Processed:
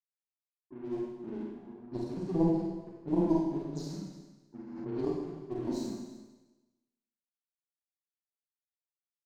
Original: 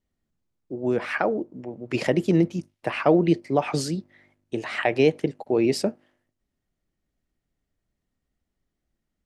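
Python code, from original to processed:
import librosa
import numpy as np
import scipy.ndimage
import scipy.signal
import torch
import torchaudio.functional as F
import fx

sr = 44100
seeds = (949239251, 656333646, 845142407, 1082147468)

p1 = fx.partial_stretch(x, sr, pct=92)
p2 = scipy.signal.sosfilt(scipy.signal.cheby1(5, 1.0, [390.0, 4200.0], 'bandstop', fs=sr, output='sos'), p1)
p3 = fx.phaser_stages(p2, sr, stages=6, low_hz=100.0, high_hz=2300.0, hz=1.7, feedback_pct=0)
p4 = np.sign(p3) * np.maximum(np.abs(p3) - 10.0 ** (-44.5 / 20.0), 0.0)
p5 = fx.cheby_harmonics(p4, sr, harmonics=(2, 3), levels_db=(-15, -14), full_scale_db=-11.5)
p6 = fx.env_lowpass(p5, sr, base_hz=810.0, full_db=-35.0)
p7 = p6 + fx.echo_single(p6, sr, ms=306, db=-18.0, dry=0)
p8 = fx.rev_schroeder(p7, sr, rt60_s=1.1, comb_ms=33, drr_db=-3.5)
p9 = fx.pre_swell(p8, sr, db_per_s=36.0, at=(4.67, 5.13))
y = p9 * 10.0 ** (-2.0 / 20.0)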